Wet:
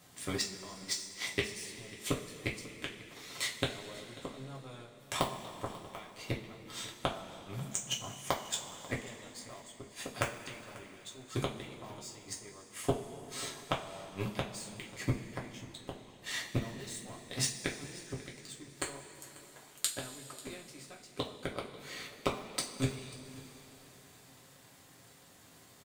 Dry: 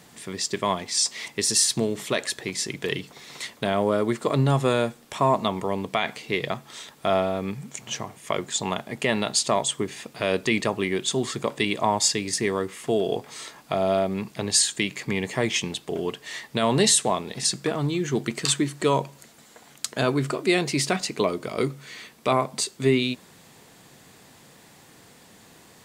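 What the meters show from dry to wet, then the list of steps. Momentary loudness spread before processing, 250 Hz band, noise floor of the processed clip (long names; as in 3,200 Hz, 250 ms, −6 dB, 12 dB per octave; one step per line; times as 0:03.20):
11 LU, −15.5 dB, −58 dBFS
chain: high-shelf EQ 6,900 Hz +4 dB
power curve on the samples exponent 1.4
in parallel at −7 dB: wrap-around overflow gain 12.5 dB
on the sum: gate with flip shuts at −19 dBFS, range −31 dB
on a send: single-tap delay 541 ms −19.5 dB
on the sum: coupled-rooms reverb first 0.26 s, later 3.7 s, from −18 dB, DRR −3 dB
level +1 dB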